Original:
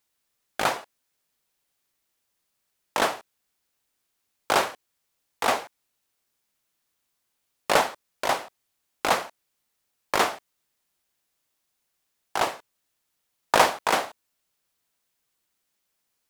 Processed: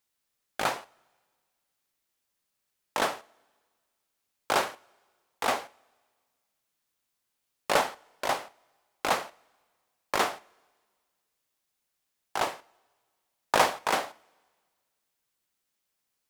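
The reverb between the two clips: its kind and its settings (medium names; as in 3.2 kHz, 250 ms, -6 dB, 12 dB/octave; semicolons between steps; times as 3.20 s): two-slope reverb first 0.4 s, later 1.7 s, from -18 dB, DRR 16 dB; trim -4 dB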